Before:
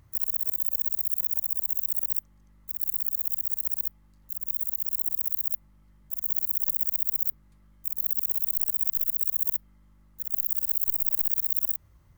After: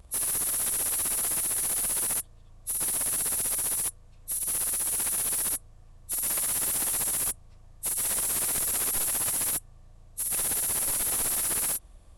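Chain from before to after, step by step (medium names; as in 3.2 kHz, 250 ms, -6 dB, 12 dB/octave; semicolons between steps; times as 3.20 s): frequency-domain pitch shifter -10 st; slew-rate limiter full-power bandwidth 160 Hz; trim +8.5 dB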